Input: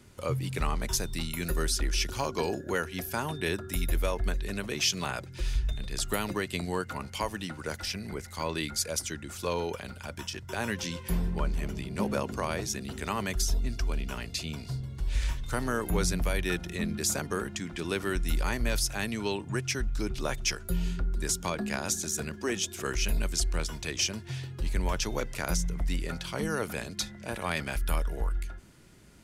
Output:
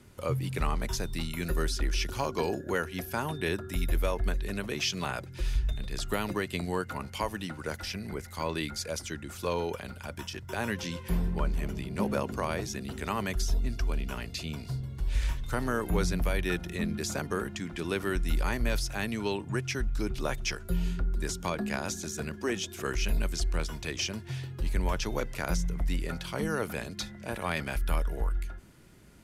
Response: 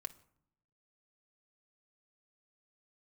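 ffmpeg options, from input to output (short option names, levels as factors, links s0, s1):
-filter_complex "[0:a]aemphasis=mode=reproduction:type=cd,acrossover=split=6500[s0][s1];[s1]acompressor=threshold=0.00316:ratio=4:attack=1:release=60[s2];[s0][s2]amix=inputs=2:normalize=0,equalizer=f=13000:w=0.8:g=11"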